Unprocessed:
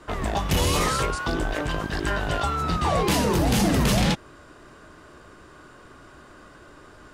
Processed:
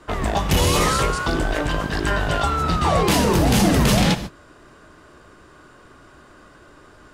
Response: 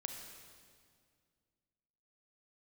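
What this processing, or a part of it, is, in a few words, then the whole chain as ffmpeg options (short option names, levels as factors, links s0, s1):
keyed gated reverb: -filter_complex "[0:a]asplit=3[s0][s1][s2];[1:a]atrim=start_sample=2205[s3];[s1][s3]afir=irnorm=-1:irlink=0[s4];[s2]apad=whole_len=314808[s5];[s4][s5]sidechaingate=range=0.0224:threshold=0.0141:ratio=16:detection=peak,volume=0.841[s6];[s0][s6]amix=inputs=2:normalize=0"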